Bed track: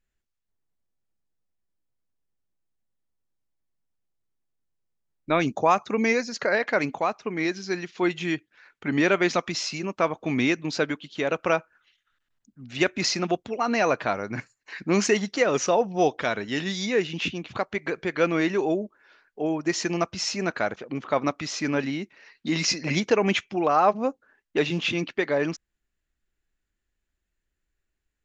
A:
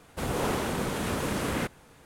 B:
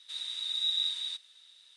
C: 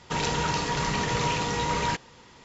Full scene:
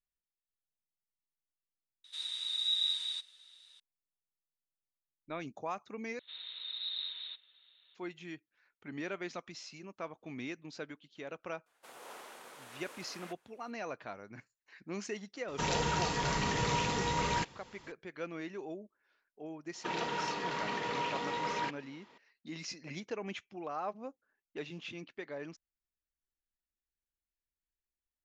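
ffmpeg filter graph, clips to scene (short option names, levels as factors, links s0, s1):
-filter_complex "[2:a]asplit=2[s0][s1];[3:a]asplit=2[s2][s3];[0:a]volume=0.119[s4];[s1]aresample=8000,aresample=44100[s5];[1:a]highpass=640[s6];[s3]acrossover=split=200 4400:gain=0.0708 1 0.158[s7][s8][s9];[s7][s8][s9]amix=inputs=3:normalize=0[s10];[s4]asplit=2[s11][s12];[s11]atrim=end=6.194[s13];[s5]atrim=end=1.76,asetpts=PTS-STARTPTS,volume=0.631[s14];[s12]atrim=start=7.946[s15];[s0]atrim=end=1.76,asetpts=PTS-STARTPTS,volume=0.841,afade=t=in:d=0.004:c=hsin,afade=t=out:st=1.756:d=0.004:c=hsin,adelay=2040[s16];[s6]atrim=end=2.05,asetpts=PTS-STARTPTS,volume=0.141,afade=t=in:d=0.004:c=hsin,afade=t=out:st=2.046:d=0.004:c=hsin,adelay=11660[s17];[s2]atrim=end=2.44,asetpts=PTS-STARTPTS,volume=0.531,afade=t=in:d=0.004:c=hsin,afade=t=out:st=2.436:d=0.004:c=hsin,adelay=15480[s18];[s10]atrim=end=2.44,asetpts=PTS-STARTPTS,volume=0.422,afade=t=in:d=0.004:c=hsin,afade=t=out:st=2.436:d=0.004:c=hsin,adelay=19740[s19];[s13][s14]acrossfade=d=0.004:c1=hsin:c2=hsin[s20];[s20][s15]acrossfade=d=0.004:c1=hsin:c2=hsin[s21];[s21][s16][s17][s18][s19]amix=inputs=5:normalize=0"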